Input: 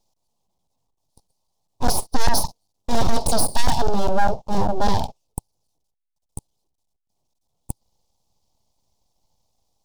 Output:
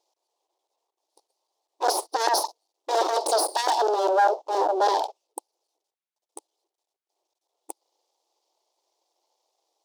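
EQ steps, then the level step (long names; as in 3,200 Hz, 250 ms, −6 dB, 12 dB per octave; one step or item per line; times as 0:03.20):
dynamic equaliser 2,400 Hz, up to −6 dB, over −43 dBFS, Q 1.6
linear-phase brick-wall high-pass 310 Hz
high-shelf EQ 7,800 Hz −11.5 dB
+2.5 dB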